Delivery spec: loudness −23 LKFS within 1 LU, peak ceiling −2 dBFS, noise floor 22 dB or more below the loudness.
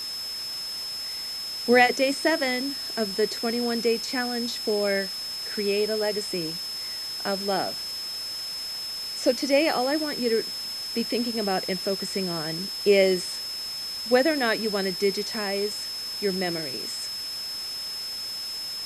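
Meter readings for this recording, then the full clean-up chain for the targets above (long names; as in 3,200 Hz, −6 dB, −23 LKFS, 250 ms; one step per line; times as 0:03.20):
interfering tone 5,200 Hz; level of the tone −31 dBFS; background noise floor −34 dBFS; target noise floor −48 dBFS; integrated loudness −26.0 LKFS; sample peak −5.5 dBFS; target loudness −23.0 LKFS
→ notch filter 5,200 Hz, Q 30
broadband denoise 14 dB, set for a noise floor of −34 dBFS
level +3 dB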